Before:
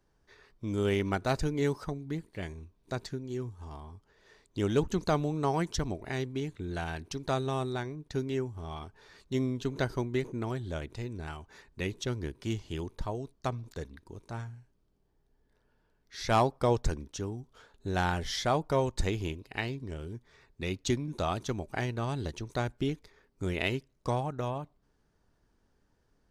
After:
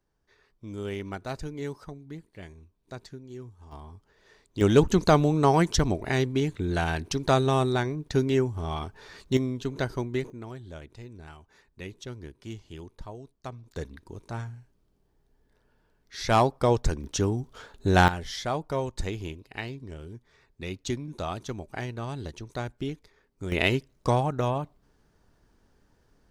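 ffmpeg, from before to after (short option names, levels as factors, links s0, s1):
-af "asetnsamples=n=441:p=0,asendcmd='3.72 volume volume 1.5dB;4.61 volume volume 8.5dB;9.37 volume volume 1.5dB;10.3 volume volume -6dB;13.74 volume volume 4dB;17.04 volume volume 10.5dB;18.08 volume volume -1.5dB;23.52 volume volume 7dB',volume=0.531"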